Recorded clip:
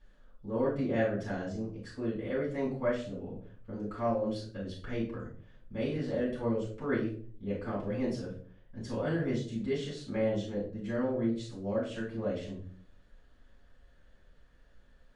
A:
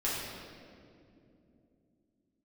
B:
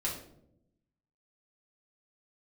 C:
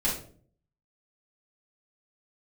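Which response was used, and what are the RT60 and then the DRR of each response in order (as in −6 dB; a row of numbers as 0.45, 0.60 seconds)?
C; 2.7, 0.75, 0.50 seconds; −8.5, −4.5, −7.5 decibels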